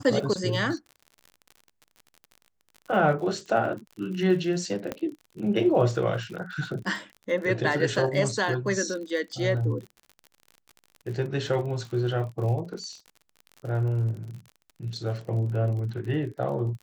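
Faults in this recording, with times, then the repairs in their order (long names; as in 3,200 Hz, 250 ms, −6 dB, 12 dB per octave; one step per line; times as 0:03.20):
surface crackle 50 per second −36 dBFS
0:04.92: click −16 dBFS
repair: click removal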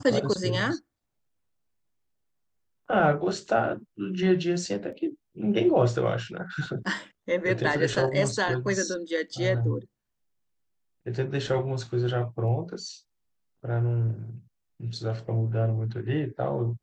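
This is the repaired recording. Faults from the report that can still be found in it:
0:04.92: click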